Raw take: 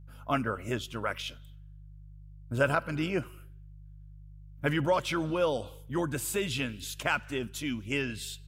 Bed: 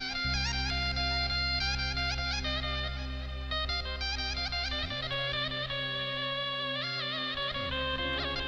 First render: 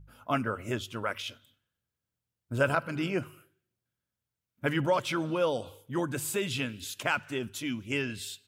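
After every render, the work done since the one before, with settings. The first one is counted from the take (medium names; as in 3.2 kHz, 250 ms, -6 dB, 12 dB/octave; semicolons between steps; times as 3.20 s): de-hum 50 Hz, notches 3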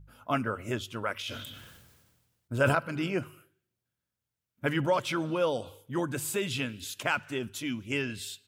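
1.19–2.77 s: decay stretcher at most 37 dB/s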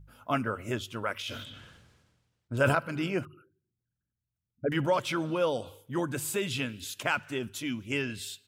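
1.44–2.57 s: distance through air 77 m; 3.25–4.72 s: resonances exaggerated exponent 3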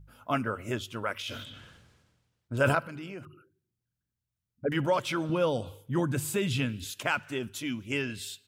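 2.85–4.65 s: compression 5:1, threshold -38 dBFS; 5.29–6.90 s: tone controls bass +8 dB, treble -1 dB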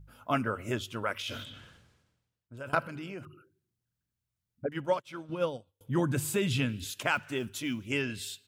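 1.40–2.73 s: fade out, to -23 dB; 4.66–5.81 s: upward expansion 2.5:1, over -47 dBFS; 7.15–7.91 s: block-companded coder 7-bit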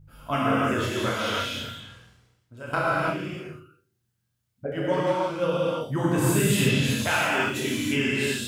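flutter echo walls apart 5.7 m, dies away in 0.26 s; gated-style reverb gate 370 ms flat, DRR -7 dB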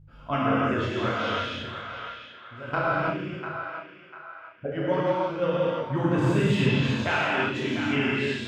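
distance through air 180 m; band-passed feedback delay 696 ms, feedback 42%, band-pass 1.6 kHz, level -7 dB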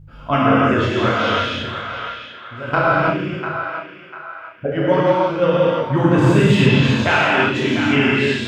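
trim +9.5 dB; peak limiter -2 dBFS, peak gain reduction 1 dB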